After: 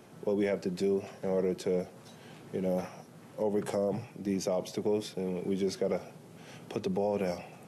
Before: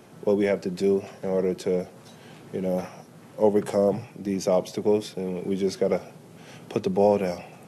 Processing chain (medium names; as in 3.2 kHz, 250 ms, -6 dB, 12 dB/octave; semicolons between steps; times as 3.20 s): peak limiter -17 dBFS, peak gain reduction 9.5 dB; trim -4 dB